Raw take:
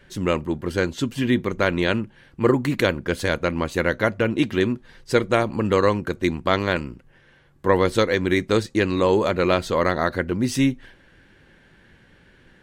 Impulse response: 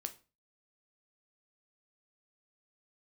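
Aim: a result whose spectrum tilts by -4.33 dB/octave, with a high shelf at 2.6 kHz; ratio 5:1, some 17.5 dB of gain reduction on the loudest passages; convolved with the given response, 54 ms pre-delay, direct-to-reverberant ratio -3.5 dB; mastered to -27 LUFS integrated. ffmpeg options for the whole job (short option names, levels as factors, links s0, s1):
-filter_complex "[0:a]highshelf=f=2600:g=9,acompressor=threshold=0.0224:ratio=5,asplit=2[s0][s1];[1:a]atrim=start_sample=2205,adelay=54[s2];[s1][s2]afir=irnorm=-1:irlink=0,volume=1.88[s3];[s0][s3]amix=inputs=2:normalize=0,volume=1.58"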